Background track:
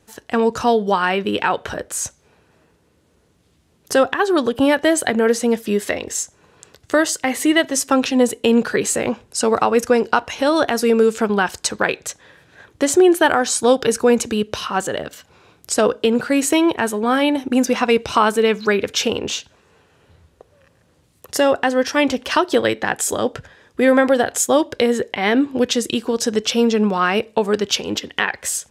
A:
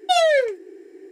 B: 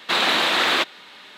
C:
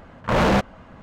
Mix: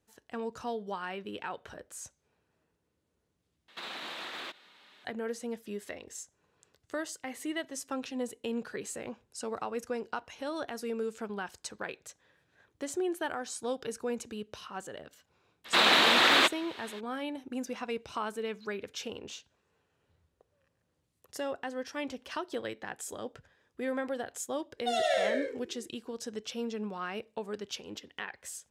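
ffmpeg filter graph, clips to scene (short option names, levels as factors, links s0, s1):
-filter_complex "[2:a]asplit=2[s0][s1];[0:a]volume=0.1[s2];[s0]alimiter=limit=0.141:level=0:latency=1:release=54[s3];[1:a]aecho=1:1:100|175|231.2|273.4|305.1|328.8:0.794|0.631|0.501|0.398|0.316|0.251[s4];[s2]asplit=2[s5][s6];[s5]atrim=end=3.684[s7];[s3]atrim=end=1.37,asetpts=PTS-STARTPTS,volume=0.178[s8];[s6]atrim=start=5.046[s9];[s1]atrim=end=1.37,asetpts=PTS-STARTPTS,volume=0.708,afade=t=in:d=0.02,afade=t=out:st=1.35:d=0.02,adelay=15640[s10];[s4]atrim=end=1.11,asetpts=PTS-STARTPTS,volume=0.188,afade=t=in:d=0.004:c=hsin,afade=t=out:st=1.106:d=0.004:c=hsin,adelay=24770[s11];[s7][s8]acrossfade=d=0.004:c1=hsin:c2=hsin[s12];[s12][s9]acrossfade=d=0.004:c1=hsin:c2=hsin[s13];[s13][s10][s11]amix=inputs=3:normalize=0"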